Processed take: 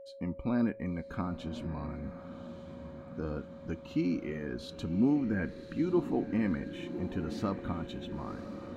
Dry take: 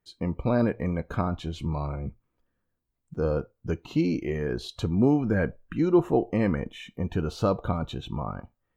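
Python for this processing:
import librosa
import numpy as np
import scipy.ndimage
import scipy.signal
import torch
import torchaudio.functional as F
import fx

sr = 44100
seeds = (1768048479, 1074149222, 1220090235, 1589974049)

p1 = fx.graphic_eq(x, sr, hz=(125, 250, 500, 2000), db=(-5, 8, -7, 3))
p2 = p1 + 10.0 ** (-38.0 / 20.0) * np.sin(2.0 * np.pi * 550.0 * np.arange(len(p1)) / sr)
p3 = p2 + fx.echo_diffused(p2, sr, ms=1079, feedback_pct=62, wet_db=-11.0, dry=0)
y = F.gain(torch.from_numpy(p3), -8.5).numpy()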